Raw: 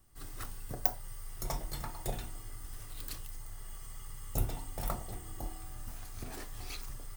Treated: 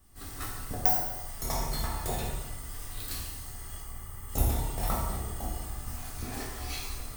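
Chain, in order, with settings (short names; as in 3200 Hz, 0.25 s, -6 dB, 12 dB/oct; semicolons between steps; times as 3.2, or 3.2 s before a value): 3.8–4.29 bell 5000 Hz -9.5 dB 2.1 oct; plate-style reverb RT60 1.1 s, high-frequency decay 0.85×, DRR -4.5 dB; gain +2 dB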